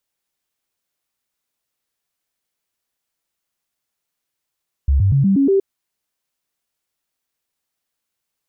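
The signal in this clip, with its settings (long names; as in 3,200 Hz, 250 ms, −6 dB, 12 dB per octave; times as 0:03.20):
stepped sweep 69 Hz up, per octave 2, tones 6, 0.12 s, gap 0.00 s −11 dBFS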